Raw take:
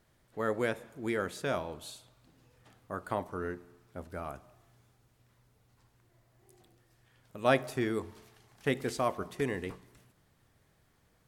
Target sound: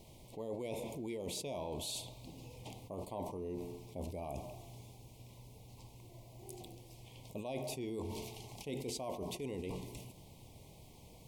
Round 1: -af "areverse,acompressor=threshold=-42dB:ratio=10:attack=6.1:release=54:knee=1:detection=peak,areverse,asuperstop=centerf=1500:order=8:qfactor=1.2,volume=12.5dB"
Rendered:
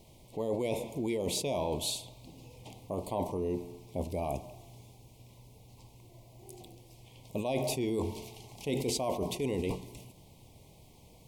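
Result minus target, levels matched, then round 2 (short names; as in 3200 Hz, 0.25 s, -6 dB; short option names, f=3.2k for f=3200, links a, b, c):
compressor: peak gain reduction -9 dB
-af "areverse,acompressor=threshold=-52dB:ratio=10:attack=6.1:release=54:knee=1:detection=peak,areverse,asuperstop=centerf=1500:order=8:qfactor=1.2,volume=12.5dB"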